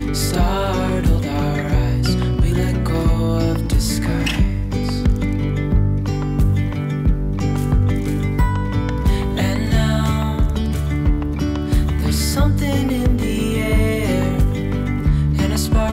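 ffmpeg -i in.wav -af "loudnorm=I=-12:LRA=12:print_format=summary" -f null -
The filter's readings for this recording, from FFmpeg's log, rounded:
Input Integrated:    -19.1 LUFS
Input True Peak:      -6.7 dBTP
Input LRA:             0.8 LU
Input Threshold:     -29.1 LUFS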